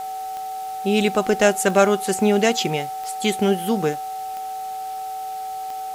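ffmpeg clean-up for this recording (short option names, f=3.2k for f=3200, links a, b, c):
-af "adeclick=t=4,bandreject=f=436.8:t=h:w=4,bandreject=f=873.6:t=h:w=4,bandreject=f=1.3104k:t=h:w=4,bandreject=f=760:w=30,afwtdn=0.0063"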